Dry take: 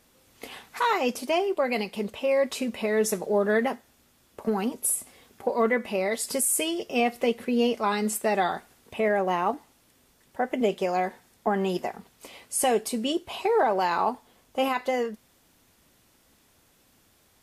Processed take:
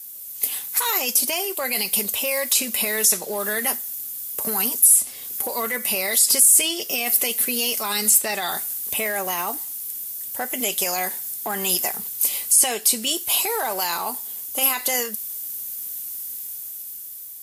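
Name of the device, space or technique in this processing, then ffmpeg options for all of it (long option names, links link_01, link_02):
FM broadcast chain: -filter_complex "[0:a]highpass=44,dynaudnorm=framelen=500:gausssize=5:maxgain=6.5dB,acrossover=split=820|5800[link_01][link_02][link_03];[link_01]acompressor=threshold=-27dB:ratio=4[link_04];[link_02]acompressor=threshold=-23dB:ratio=4[link_05];[link_03]acompressor=threshold=-43dB:ratio=4[link_06];[link_04][link_05][link_06]amix=inputs=3:normalize=0,aemphasis=mode=production:type=75fm,alimiter=limit=-16dB:level=0:latency=1:release=11,asoftclip=type=hard:threshold=-17.5dB,lowpass=frequency=15000:width=0.5412,lowpass=frequency=15000:width=1.3066,aemphasis=mode=production:type=75fm,volume=-2dB"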